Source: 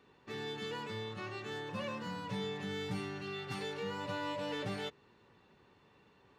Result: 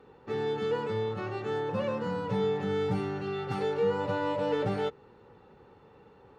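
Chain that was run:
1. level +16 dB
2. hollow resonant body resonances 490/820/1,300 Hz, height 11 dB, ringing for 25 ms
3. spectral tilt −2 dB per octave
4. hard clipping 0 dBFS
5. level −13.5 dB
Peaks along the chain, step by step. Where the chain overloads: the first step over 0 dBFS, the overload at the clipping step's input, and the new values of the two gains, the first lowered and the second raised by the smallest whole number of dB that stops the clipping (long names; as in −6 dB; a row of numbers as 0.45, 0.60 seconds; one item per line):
−10.5, −6.5, −4.5, −4.5, −18.0 dBFS
no step passes full scale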